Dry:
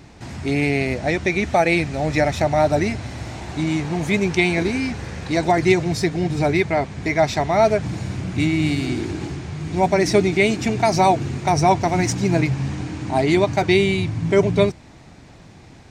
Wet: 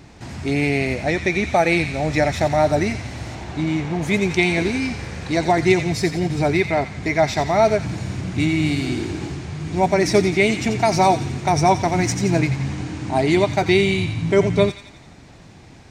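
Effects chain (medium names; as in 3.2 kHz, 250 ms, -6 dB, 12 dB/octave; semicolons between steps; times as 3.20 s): 3.34–4.01 s: treble shelf 7.7 kHz -> 4.7 kHz -11.5 dB; feedback echo behind a high-pass 87 ms, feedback 54%, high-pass 1.9 kHz, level -7.5 dB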